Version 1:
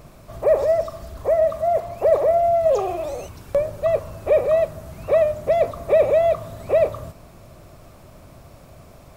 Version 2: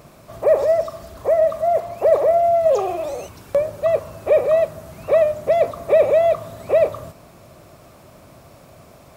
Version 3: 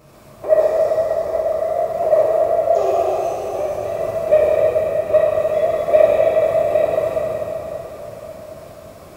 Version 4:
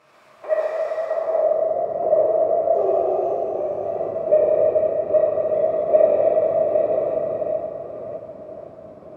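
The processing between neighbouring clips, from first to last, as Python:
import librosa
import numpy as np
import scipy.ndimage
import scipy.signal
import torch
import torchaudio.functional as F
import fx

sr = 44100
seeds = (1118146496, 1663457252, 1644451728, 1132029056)

y1 = fx.highpass(x, sr, hz=150.0, slope=6)
y1 = y1 * librosa.db_to_amplitude(2.0)
y2 = fx.level_steps(y1, sr, step_db=12)
y2 = fx.rev_plate(y2, sr, seeds[0], rt60_s=4.5, hf_ratio=0.8, predelay_ms=0, drr_db=-9.5)
y2 = y2 * librosa.db_to_amplitude(-3.0)
y3 = fx.reverse_delay(y2, sr, ms=511, wet_db=-8.0)
y3 = fx.filter_sweep_bandpass(y3, sr, from_hz=1800.0, to_hz=350.0, start_s=1.02, end_s=1.75, q=0.85)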